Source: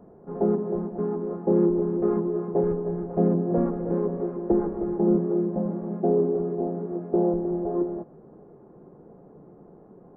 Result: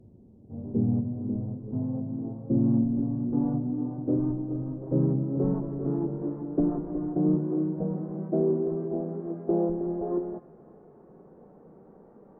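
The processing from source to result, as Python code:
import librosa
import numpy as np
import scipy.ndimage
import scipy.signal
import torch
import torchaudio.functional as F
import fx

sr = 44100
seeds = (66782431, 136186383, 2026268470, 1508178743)

y = fx.speed_glide(x, sr, from_pct=53, to_pct=111)
y = fx.echo_wet_highpass(y, sr, ms=284, feedback_pct=65, hz=1600.0, wet_db=-11)
y = y * 10.0 ** (-3.0 / 20.0)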